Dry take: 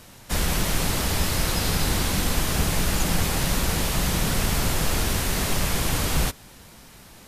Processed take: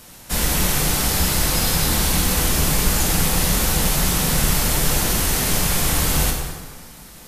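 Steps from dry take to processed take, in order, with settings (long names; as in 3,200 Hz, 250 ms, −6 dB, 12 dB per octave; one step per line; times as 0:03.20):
high-shelf EQ 6,200 Hz +8 dB
0:02.81–0:03.96: background noise pink −57 dBFS
dense smooth reverb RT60 1.6 s, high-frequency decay 0.7×, DRR 0 dB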